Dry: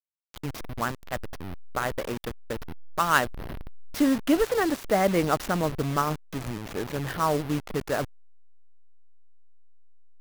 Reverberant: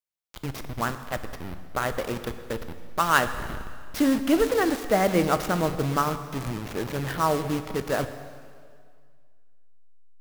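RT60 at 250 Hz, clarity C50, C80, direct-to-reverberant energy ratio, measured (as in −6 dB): 1.9 s, 11.0 dB, 11.5 dB, 9.5 dB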